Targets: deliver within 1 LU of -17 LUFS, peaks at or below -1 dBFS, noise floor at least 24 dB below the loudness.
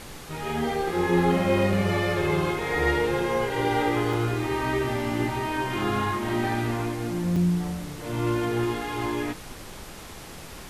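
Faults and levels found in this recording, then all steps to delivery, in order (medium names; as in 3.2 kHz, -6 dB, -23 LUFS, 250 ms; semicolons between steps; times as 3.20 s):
dropouts 2; longest dropout 3.3 ms; noise floor -42 dBFS; noise floor target -50 dBFS; loudness -26.0 LUFS; peak level -10.5 dBFS; loudness target -17.0 LUFS
-> interpolate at 4.13/7.36 s, 3.3 ms; noise print and reduce 8 dB; trim +9 dB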